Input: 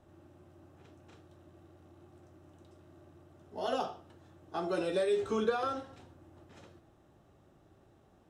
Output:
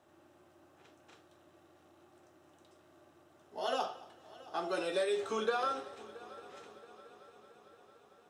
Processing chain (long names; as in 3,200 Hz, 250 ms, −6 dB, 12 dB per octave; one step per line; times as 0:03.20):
high-pass filter 730 Hz 6 dB per octave
on a send: echo machine with several playback heads 225 ms, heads first and third, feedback 69%, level −20.5 dB
on the sum: level +2.5 dB